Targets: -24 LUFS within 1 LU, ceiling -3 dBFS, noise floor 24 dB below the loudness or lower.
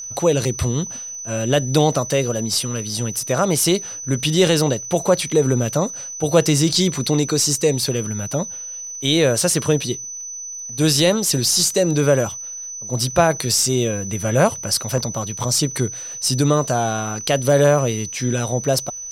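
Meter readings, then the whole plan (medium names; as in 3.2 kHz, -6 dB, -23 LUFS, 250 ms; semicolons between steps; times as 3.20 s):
tick rate 26 per s; steady tone 6 kHz; tone level -29 dBFS; loudness -19.0 LUFS; peak level -1.5 dBFS; loudness target -24.0 LUFS
-> de-click; band-stop 6 kHz, Q 30; trim -5 dB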